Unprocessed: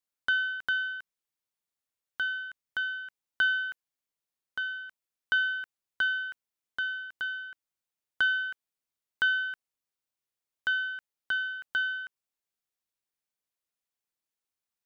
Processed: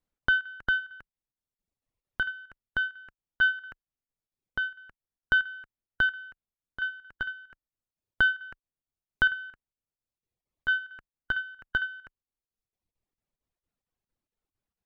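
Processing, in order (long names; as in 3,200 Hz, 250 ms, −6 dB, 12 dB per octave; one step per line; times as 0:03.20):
reverb reduction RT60 1.1 s
square-wave tremolo 4.4 Hz, depth 65%, duty 80%
spectral tilt −4 dB per octave
level +6 dB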